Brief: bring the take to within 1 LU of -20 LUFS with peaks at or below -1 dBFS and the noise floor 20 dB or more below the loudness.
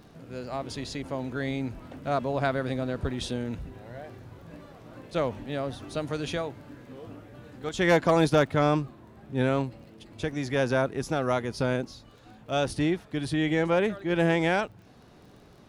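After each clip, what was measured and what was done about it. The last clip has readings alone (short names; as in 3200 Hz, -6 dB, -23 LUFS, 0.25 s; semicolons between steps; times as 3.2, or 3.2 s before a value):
ticks 24/s; loudness -28.0 LUFS; peak -12.0 dBFS; loudness target -20.0 LUFS
-> de-click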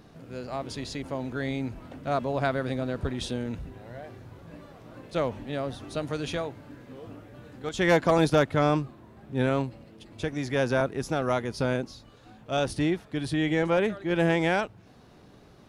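ticks 0/s; loudness -28.0 LUFS; peak -12.0 dBFS; loudness target -20.0 LUFS
-> gain +8 dB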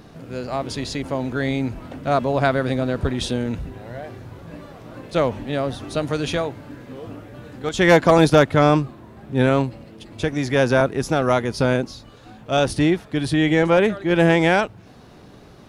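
loudness -20.0 LUFS; peak -4.0 dBFS; noise floor -45 dBFS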